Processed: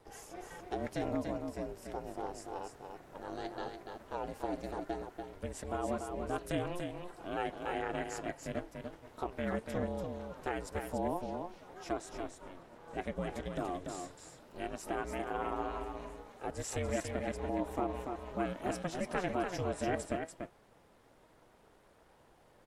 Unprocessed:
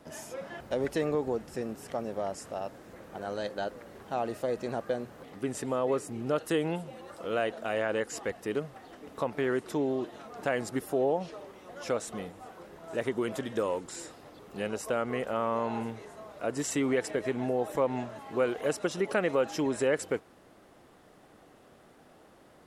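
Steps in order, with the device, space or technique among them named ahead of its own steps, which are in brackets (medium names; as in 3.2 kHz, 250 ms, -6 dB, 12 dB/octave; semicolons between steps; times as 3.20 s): 11.93–13.57 s: treble shelf 8.7 kHz -7 dB; alien voice (ring modulator 180 Hz; flange 0.18 Hz, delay 1 ms, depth 6.4 ms, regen +81%); delay 289 ms -5.5 dB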